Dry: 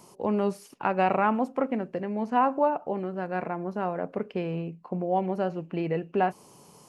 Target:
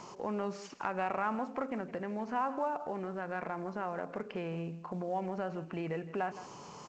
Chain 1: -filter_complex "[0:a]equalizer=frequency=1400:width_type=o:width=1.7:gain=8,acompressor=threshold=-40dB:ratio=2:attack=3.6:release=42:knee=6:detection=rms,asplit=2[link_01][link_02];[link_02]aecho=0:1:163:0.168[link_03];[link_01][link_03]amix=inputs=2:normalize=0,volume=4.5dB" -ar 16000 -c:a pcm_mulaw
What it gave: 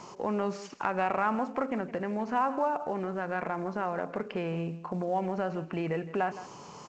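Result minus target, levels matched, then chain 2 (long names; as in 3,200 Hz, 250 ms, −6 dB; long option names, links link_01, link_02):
downward compressor: peak gain reduction −5 dB
-filter_complex "[0:a]equalizer=frequency=1400:width_type=o:width=1.7:gain=8,acompressor=threshold=-50.5dB:ratio=2:attack=3.6:release=42:knee=6:detection=rms,asplit=2[link_01][link_02];[link_02]aecho=0:1:163:0.168[link_03];[link_01][link_03]amix=inputs=2:normalize=0,volume=4.5dB" -ar 16000 -c:a pcm_mulaw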